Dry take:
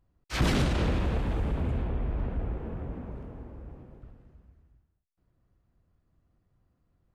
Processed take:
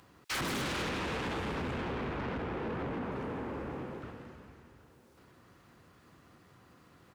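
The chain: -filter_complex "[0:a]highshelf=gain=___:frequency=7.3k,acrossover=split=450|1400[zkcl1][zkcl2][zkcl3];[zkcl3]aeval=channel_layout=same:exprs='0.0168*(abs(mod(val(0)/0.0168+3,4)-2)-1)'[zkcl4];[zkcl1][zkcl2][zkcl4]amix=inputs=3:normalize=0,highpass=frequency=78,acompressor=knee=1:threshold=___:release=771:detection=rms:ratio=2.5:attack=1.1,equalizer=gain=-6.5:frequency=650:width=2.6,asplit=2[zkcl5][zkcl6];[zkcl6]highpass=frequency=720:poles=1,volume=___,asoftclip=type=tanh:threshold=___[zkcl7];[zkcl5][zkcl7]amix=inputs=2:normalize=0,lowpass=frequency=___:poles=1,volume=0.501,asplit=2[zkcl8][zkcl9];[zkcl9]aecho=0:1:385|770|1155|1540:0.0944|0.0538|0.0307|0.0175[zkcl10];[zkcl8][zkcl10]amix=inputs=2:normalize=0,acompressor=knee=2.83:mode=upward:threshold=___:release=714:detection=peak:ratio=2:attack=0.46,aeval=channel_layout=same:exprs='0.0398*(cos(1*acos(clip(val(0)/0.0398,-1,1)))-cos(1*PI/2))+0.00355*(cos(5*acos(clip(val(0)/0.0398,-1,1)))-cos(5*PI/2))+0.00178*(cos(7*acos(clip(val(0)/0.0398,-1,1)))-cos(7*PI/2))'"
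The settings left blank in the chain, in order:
-2.5, 0.0126, 17.8, 0.0398, 7.8k, 0.00398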